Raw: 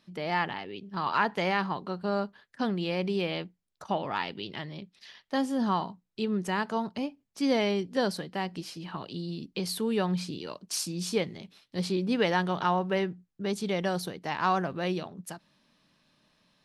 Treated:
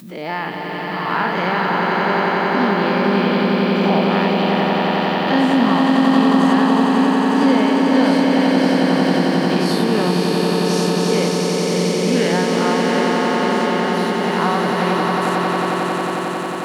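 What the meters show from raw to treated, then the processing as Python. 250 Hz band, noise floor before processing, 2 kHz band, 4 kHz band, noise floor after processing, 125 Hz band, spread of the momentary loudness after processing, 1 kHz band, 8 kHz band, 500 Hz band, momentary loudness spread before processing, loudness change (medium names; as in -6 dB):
+16.5 dB, -77 dBFS, +14.0 dB, +13.0 dB, -24 dBFS, +13.5 dB, 5 LU, +13.5 dB, +10.0 dB, +14.0 dB, 12 LU, +14.0 dB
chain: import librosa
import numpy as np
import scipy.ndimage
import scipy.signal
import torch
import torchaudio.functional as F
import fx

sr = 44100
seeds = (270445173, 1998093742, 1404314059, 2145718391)

p1 = fx.spec_dilate(x, sr, span_ms=120)
p2 = fx.rider(p1, sr, range_db=10, speed_s=2.0)
p3 = fx.lowpass(p2, sr, hz=3700.0, slope=6)
p4 = fx.low_shelf(p3, sr, hz=170.0, db=-7.5)
p5 = p4 + fx.echo_swell(p4, sr, ms=90, loudest=8, wet_db=-5.0, dry=0)
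p6 = fx.dmg_noise_colour(p5, sr, seeds[0], colour='blue', level_db=-60.0)
p7 = fx.peak_eq(p6, sr, hz=250.0, db=8.5, octaves=0.72)
y = fx.pre_swell(p7, sr, db_per_s=67.0)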